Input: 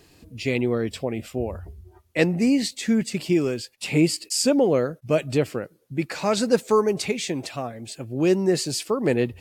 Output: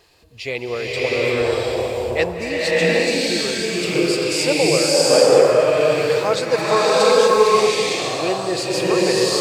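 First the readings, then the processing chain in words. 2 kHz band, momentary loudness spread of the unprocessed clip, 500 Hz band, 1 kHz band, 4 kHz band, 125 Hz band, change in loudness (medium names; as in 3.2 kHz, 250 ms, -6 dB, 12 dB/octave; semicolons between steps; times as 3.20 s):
+10.0 dB, 11 LU, +8.5 dB, +11.0 dB, +10.5 dB, -1.0 dB, +6.5 dB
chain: graphic EQ 125/250/500/1000/2000/4000 Hz -3/-11/+6/+6/+3/+6 dB; vibrato 6.4 Hz 12 cents; swelling reverb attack 740 ms, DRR -8 dB; trim -3.5 dB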